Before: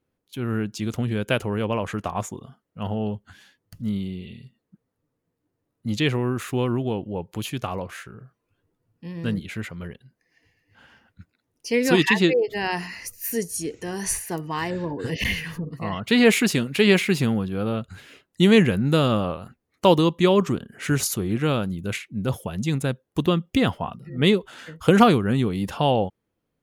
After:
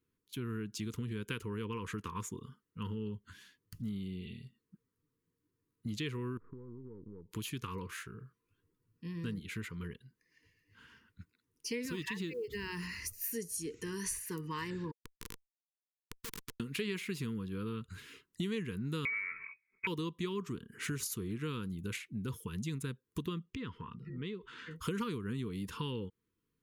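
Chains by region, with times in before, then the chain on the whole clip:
0:06.37–0:07.31: gain on one half-wave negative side −7 dB + inverse Chebyshev low-pass filter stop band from 4,500 Hz, stop band 80 dB + downward compressor 10 to 1, threshold −37 dBFS
0:11.85–0:13.14: one scale factor per block 7 bits + parametric band 69 Hz +14 dB 1.6 octaves + downward compressor 2 to 1, threshold −28 dBFS
0:14.91–0:16.60: output level in coarse steps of 14 dB + comparator with hysteresis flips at −19.5 dBFS + every bin compressed towards the loudest bin 2 to 1
0:19.05–0:19.87: lower of the sound and its delayed copy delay 4.3 ms + parametric band 310 Hz +13.5 dB 0.83 octaves + voice inversion scrambler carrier 2,500 Hz
0:23.43–0:24.71: low-pass filter 3,500 Hz + downward compressor 3 to 1, threshold −34 dBFS
whole clip: elliptic band-stop filter 470–960 Hz, stop band 40 dB; high-shelf EQ 8,000 Hz +4 dB; downward compressor 4 to 1, threshold −31 dBFS; level −5.5 dB

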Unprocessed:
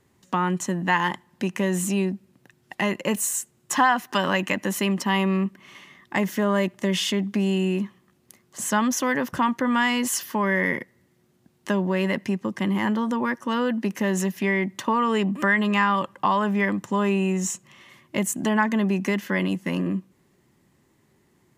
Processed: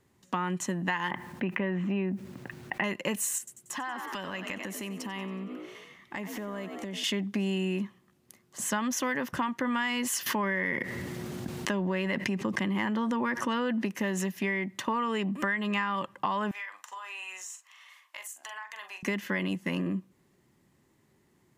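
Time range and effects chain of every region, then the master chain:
0:01.11–0:02.84: low-pass filter 2,500 Hz 24 dB per octave + bit-depth reduction 12 bits, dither none + envelope flattener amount 50%
0:03.38–0:07.04: echo with shifted repeats 92 ms, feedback 51%, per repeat +58 Hz, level −11.5 dB + downward compressor, threshold −30 dBFS
0:10.26–0:13.86: parametric band 14,000 Hz −5 dB 1.3 octaves + envelope flattener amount 70%
0:16.51–0:19.03: high-pass filter 880 Hz 24 dB per octave + downward compressor 16 to 1, threshold −34 dBFS + double-tracking delay 43 ms −8 dB
whole clip: dynamic equaliser 2,300 Hz, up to +4 dB, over −39 dBFS, Q 0.95; downward compressor, threshold −22 dBFS; level −4 dB

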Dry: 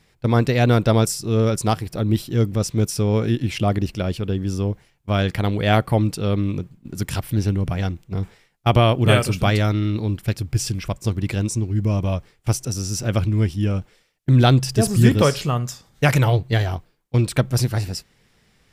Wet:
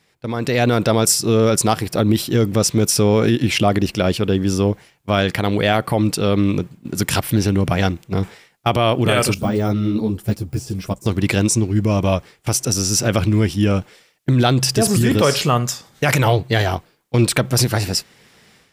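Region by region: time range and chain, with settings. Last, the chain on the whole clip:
0:09.34–0:11.06: de-essing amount 85% + parametric band 2,300 Hz −10.5 dB 2.5 octaves + string-ensemble chorus
whole clip: brickwall limiter −13 dBFS; high-pass filter 230 Hz 6 dB per octave; automatic gain control gain up to 11.5 dB

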